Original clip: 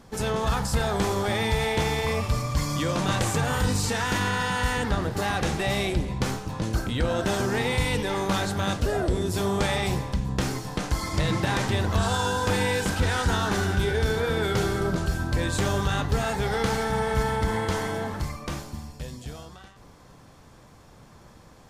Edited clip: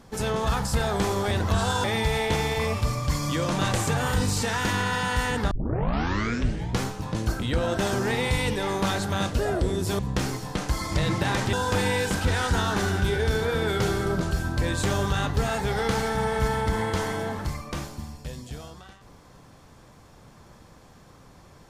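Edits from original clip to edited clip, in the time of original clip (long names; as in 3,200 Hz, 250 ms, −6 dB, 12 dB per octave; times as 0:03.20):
0:04.98: tape start 1.30 s
0:09.46–0:10.21: remove
0:11.75–0:12.28: move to 0:01.31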